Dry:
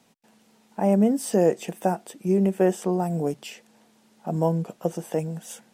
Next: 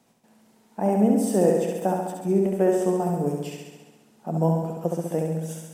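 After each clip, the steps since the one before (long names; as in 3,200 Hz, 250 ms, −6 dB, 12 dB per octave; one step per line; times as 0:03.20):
parametric band 3,400 Hz −5 dB 2.2 octaves
on a send: flutter between parallel walls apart 11.7 metres, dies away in 1.2 s
on the sum: level −1 dB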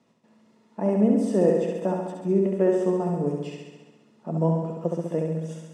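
high-frequency loss of the air 96 metres
notch comb filter 770 Hz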